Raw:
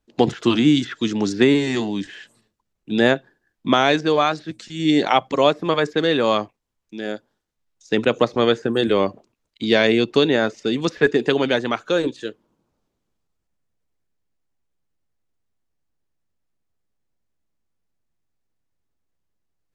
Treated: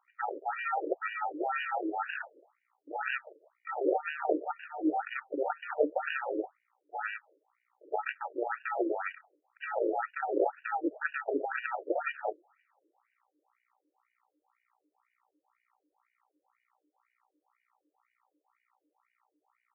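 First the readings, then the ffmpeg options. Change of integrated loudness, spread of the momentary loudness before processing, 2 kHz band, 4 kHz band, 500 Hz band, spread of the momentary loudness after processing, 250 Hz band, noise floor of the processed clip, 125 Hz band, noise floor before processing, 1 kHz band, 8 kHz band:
-14.5 dB, 13 LU, -11.0 dB, -27.5 dB, -14.5 dB, 9 LU, -18.5 dB, -83 dBFS, under -40 dB, -76 dBFS, -9.0 dB, no reading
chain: -filter_complex "[0:a]acrossover=split=3500[s0][s1];[s1]acompressor=threshold=0.00891:ratio=4:attack=1:release=60[s2];[s0][s2]amix=inputs=2:normalize=0,equalizer=f=125:t=o:w=1:g=5,equalizer=f=250:t=o:w=1:g=9,equalizer=f=500:t=o:w=1:g=-12,equalizer=f=1000:t=o:w=1:g=9,equalizer=f=2000:t=o:w=1:g=5,equalizer=f=4000:t=o:w=1:g=8,areverse,acompressor=threshold=0.0562:ratio=10,areverse,aeval=exprs='val(0)+0.000794*(sin(2*PI*60*n/s)+sin(2*PI*2*60*n/s)/2+sin(2*PI*3*60*n/s)/3+sin(2*PI*4*60*n/s)/4+sin(2*PI*5*60*n/s)/5)':c=same,aresample=16000,acrusher=samples=15:mix=1:aa=0.000001,aresample=44100,afftfilt=real='re*between(b*sr/1024,410*pow(2100/410,0.5+0.5*sin(2*PI*2*pts/sr))/1.41,410*pow(2100/410,0.5+0.5*sin(2*PI*2*pts/sr))*1.41)':imag='im*between(b*sr/1024,410*pow(2100/410,0.5+0.5*sin(2*PI*2*pts/sr))/1.41,410*pow(2100/410,0.5+0.5*sin(2*PI*2*pts/sr))*1.41)':win_size=1024:overlap=0.75,volume=2"

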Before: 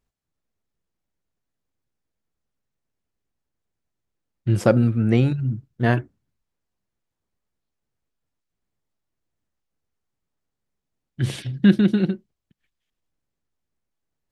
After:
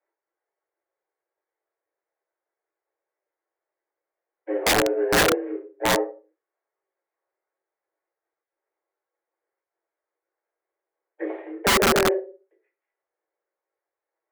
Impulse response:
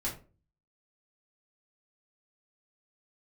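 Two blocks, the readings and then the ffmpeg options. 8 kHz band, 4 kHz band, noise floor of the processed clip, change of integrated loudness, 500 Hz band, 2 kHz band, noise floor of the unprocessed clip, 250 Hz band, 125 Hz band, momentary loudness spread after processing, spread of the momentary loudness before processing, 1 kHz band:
no reading, +11.5 dB, under -85 dBFS, -0.5 dB, +3.0 dB, +7.5 dB, -82 dBFS, -9.0 dB, -17.0 dB, 15 LU, 11 LU, +8.5 dB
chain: -filter_complex "[0:a]acrossover=split=860[s0][s1];[s1]acompressor=threshold=0.00891:ratio=10[s2];[s0][s2]amix=inputs=2:normalize=0,acrusher=bits=7:mode=log:mix=0:aa=0.000001,highpass=f=210:t=q:w=0.5412,highpass=f=210:t=q:w=1.307,lowpass=f=2000:t=q:w=0.5176,lowpass=f=2000:t=q:w=0.7071,lowpass=f=2000:t=q:w=1.932,afreqshift=190[s3];[1:a]atrim=start_sample=2205,afade=t=out:st=0.39:d=0.01,atrim=end_sample=17640[s4];[s3][s4]afir=irnorm=-1:irlink=0,aeval=exprs='(mod(4.47*val(0)+1,2)-1)/4.47':c=same"

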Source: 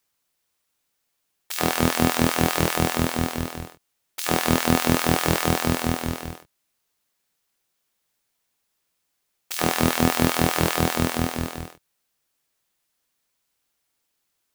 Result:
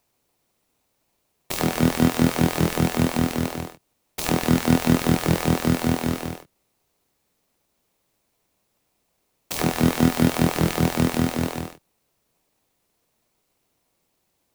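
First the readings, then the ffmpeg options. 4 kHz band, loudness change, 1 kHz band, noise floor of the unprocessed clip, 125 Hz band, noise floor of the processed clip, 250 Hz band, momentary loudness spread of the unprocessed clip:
-3.0 dB, +0.5 dB, -3.0 dB, -76 dBFS, +3.5 dB, -73 dBFS, +3.5 dB, 12 LU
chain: -filter_complex "[0:a]highpass=110,acrossover=split=280[s0][s1];[s1]acompressor=threshold=0.0447:ratio=3[s2];[s0][s2]amix=inputs=2:normalize=0,asplit=2[s3][s4];[s4]acrusher=samples=26:mix=1:aa=0.000001,volume=0.708[s5];[s3][s5]amix=inputs=2:normalize=0,volume=1.19"

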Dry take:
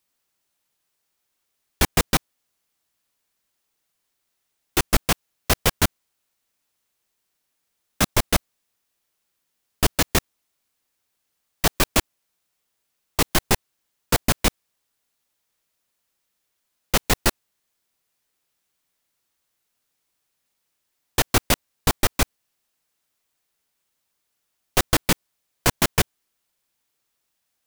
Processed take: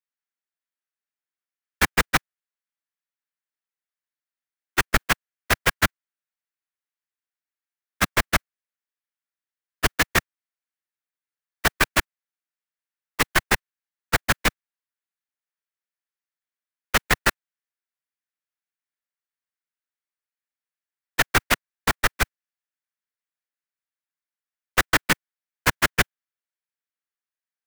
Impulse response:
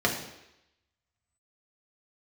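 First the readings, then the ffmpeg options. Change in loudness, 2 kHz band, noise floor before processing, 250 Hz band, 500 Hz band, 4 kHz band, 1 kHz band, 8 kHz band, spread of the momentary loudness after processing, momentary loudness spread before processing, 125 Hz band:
-0.5 dB, +5.5 dB, -76 dBFS, -4.5 dB, -3.0 dB, -1.5 dB, +1.5 dB, -4.0 dB, 6 LU, 5 LU, -4.5 dB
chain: -filter_complex "[0:a]agate=range=0.0891:threshold=0.1:ratio=16:detection=peak,equalizer=f=1700:w=1.1:g=12,acrossover=split=130|6800[s0][s1][s2];[s0]acrusher=bits=5:mix=0:aa=0.000001[s3];[s3][s1][s2]amix=inputs=3:normalize=0,volume=0.668"

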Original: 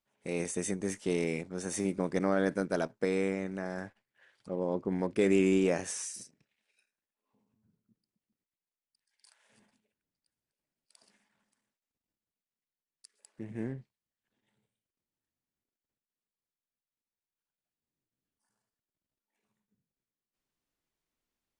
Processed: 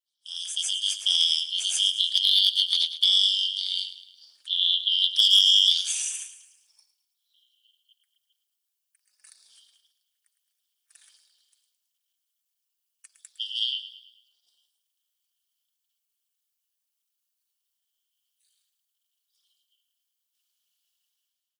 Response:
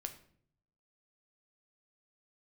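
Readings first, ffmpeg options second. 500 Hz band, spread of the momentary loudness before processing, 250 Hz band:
under -35 dB, 13 LU, under -40 dB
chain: -filter_complex "[0:a]afftfilt=real='real(if(lt(b,272),68*(eq(floor(b/68),0)*2+eq(floor(b/68),1)*3+eq(floor(b/68),2)*0+eq(floor(b/68),3)*1)+mod(b,68),b),0)':imag='imag(if(lt(b,272),68*(eq(floor(b/68),0)*2+eq(floor(b/68),1)*3+eq(floor(b/68),2)*0+eq(floor(b/68),3)*1)+mod(b,68),b),0)':win_size=2048:overlap=0.75,flanger=delay=4.4:depth=1.4:regen=34:speed=0.31:shape=sinusoidal,dynaudnorm=f=170:g=7:m=5.62,highpass=190,asoftclip=type=hard:threshold=0.398,acrossover=split=9500[s0][s1];[s1]acompressor=threshold=0.00316:ratio=4:attack=1:release=60[s2];[s0][s2]amix=inputs=2:normalize=0,aderivative,asplit=2[s3][s4];[s4]aecho=0:1:108|216|324|432|540:0.224|0.107|0.0516|0.0248|0.0119[s5];[s3][s5]amix=inputs=2:normalize=0,tremolo=f=240:d=0.824,highshelf=f=5900:g=-4.5,bandreject=f=2000:w=9.1,volume=2.51"

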